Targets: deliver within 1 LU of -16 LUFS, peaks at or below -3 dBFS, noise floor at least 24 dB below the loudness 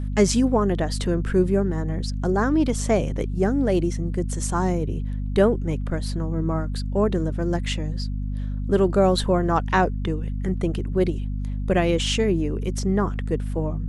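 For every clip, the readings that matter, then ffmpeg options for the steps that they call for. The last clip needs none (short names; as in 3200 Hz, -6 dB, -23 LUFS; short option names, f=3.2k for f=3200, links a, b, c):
hum 50 Hz; harmonics up to 250 Hz; hum level -24 dBFS; loudness -23.5 LUFS; peak -5.0 dBFS; loudness target -16.0 LUFS
-> -af "bandreject=f=50:t=h:w=6,bandreject=f=100:t=h:w=6,bandreject=f=150:t=h:w=6,bandreject=f=200:t=h:w=6,bandreject=f=250:t=h:w=6"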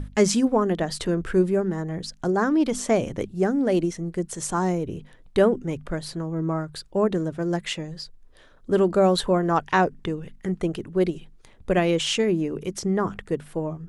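hum none; loudness -24.5 LUFS; peak -7.0 dBFS; loudness target -16.0 LUFS
-> -af "volume=8.5dB,alimiter=limit=-3dB:level=0:latency=1"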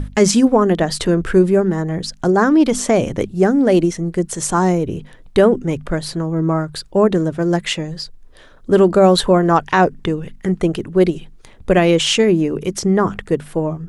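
loudness -16.5 LUFS; peak -3.0 dBFS; noise floor -43 dBFS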